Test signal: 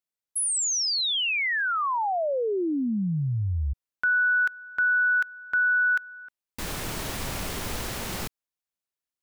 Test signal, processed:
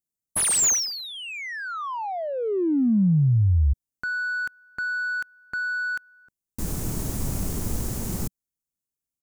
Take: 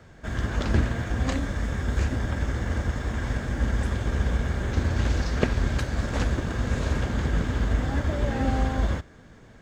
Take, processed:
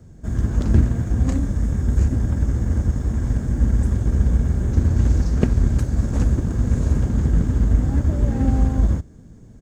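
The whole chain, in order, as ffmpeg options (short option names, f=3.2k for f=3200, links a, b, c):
-filter_complex "[0:a]firequalizer=gain_entry='entry(190,0);entry(550,-10);entry(1600,-12);entry(3500,-10);entry(6700,3)':delay=0.05:min_phase=1,asplit=2[a][b];[b]adynamicsmooth=sensitivity=6.5:basefreq=930,volume=3dB[c];[a][c]amix=inputs=2:normalize=0"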